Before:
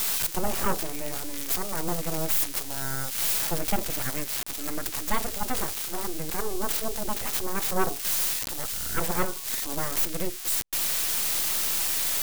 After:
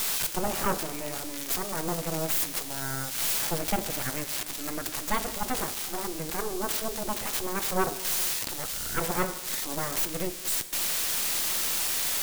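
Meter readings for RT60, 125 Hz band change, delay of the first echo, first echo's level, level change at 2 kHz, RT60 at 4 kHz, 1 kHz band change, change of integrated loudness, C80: 1.6 s, -1.0 dB, no echo, no echo, 0.0 dB, 1.5 s, 0.0 dB, -1.5 dB, 14.0 dB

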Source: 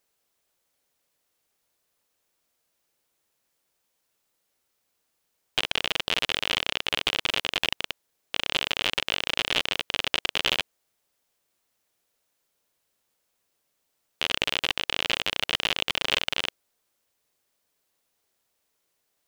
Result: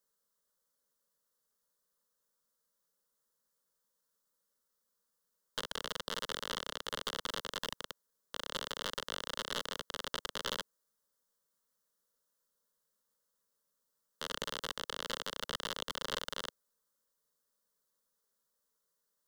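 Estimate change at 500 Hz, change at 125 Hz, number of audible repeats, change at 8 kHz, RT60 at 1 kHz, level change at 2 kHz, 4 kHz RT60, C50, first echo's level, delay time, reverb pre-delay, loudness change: -7.5 dB, -10.5 dB, no echo, -7.0 dB, no reverb, -15.0 dB, no reverb, no reverb, no echo, no echo, no reverb, -13.5 dB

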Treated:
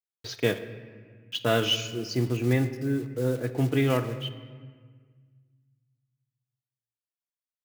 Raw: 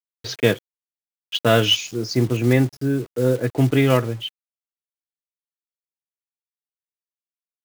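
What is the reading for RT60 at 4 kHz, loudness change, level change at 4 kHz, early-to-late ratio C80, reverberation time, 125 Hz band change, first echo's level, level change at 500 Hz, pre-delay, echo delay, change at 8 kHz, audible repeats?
1.2 s, -7.5 dB, -7.5 dB, 12.5 dB, 1.6 s, -6.5 dB, no echo, -7.5 dB, 3 ms, no echo, -7.5 dB, no echo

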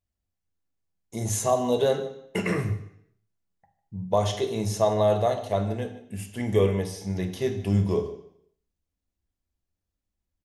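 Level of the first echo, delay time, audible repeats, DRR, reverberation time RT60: -19.0 dB, 151 ms, 1, 5.5 dB, 0.70 s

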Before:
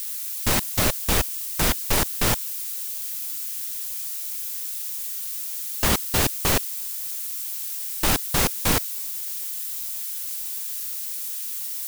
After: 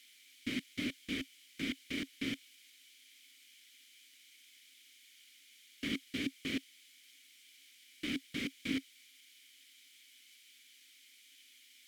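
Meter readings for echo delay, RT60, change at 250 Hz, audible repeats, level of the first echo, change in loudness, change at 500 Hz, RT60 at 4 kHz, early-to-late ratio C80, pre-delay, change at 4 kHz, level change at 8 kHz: no echo, no reverb, -7.5 dB, no echo, no echo, -15.5 dB, -20.5 dB, no reverb, no reverb, no reverb, -14.5 dB, -29.0 dB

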